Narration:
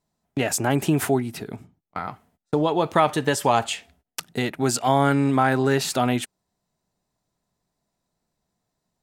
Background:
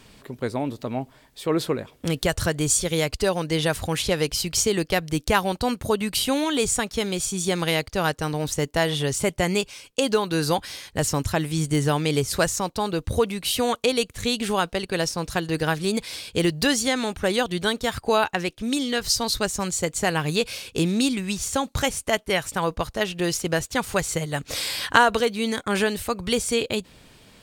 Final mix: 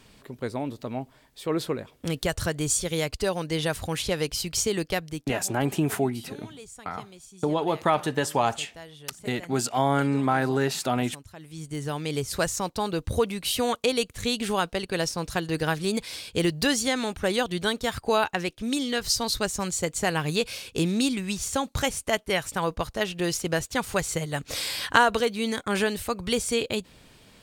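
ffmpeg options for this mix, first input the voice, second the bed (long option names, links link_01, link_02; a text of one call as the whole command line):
ffmpeg -i stem1.wav -i stem2.wav -filter_complex "[0:a]adelay=4900,volume=-4dB[link_01];[1:a]volume=15.5dB,afade=type=out:start_time=4.9:duration=0.49:silence=0.125893,afade=type=in:start_time=11.36:duration=1.33:silence=0.105925[link_02];[link_01][link_02]amix=inputs=2:normalize=0" out.wav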